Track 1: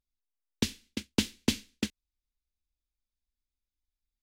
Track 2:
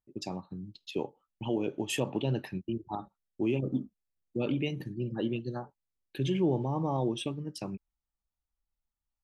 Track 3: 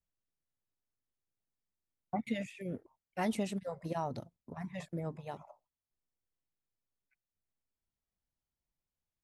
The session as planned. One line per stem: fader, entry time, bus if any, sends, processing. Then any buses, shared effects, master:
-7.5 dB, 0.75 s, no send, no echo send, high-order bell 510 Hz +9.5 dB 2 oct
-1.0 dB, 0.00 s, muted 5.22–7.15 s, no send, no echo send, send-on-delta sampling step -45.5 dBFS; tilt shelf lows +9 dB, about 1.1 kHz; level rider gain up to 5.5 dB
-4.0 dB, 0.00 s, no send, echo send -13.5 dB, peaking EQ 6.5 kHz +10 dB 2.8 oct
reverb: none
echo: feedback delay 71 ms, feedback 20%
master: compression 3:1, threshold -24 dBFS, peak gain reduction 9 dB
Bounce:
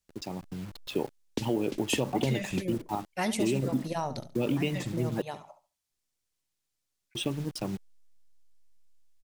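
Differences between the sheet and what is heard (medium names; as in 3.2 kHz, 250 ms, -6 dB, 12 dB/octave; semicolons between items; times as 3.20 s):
stem 2: missing tilt shelf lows +9 dB, about 1.1 kHz; stem 3 -4.0 dB -> +3.0 dB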